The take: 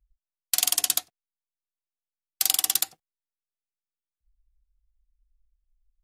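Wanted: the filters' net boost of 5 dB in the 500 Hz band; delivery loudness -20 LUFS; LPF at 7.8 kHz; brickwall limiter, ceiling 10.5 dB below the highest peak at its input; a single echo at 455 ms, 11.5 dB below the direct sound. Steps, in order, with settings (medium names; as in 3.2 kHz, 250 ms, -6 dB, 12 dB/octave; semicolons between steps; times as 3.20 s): low-pass 7.8 kHz; peaking EQ 500 Hz +8 dB; peak limiter -16.5 dBFS; delay 455 ms -11.5 dB; trim +14.5 dB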